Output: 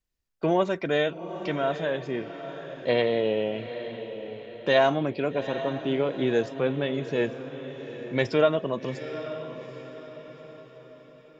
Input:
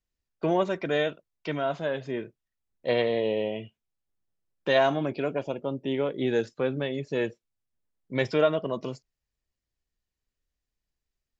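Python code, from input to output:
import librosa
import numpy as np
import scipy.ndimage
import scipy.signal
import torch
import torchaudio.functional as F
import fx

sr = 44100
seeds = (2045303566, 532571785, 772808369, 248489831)

y = fx.echo_diffused(x, sr, ms=822, feedback_pct=45, wet_db=-11)
y = F.gain(torch.from_numpy(y), 1.5).numpy()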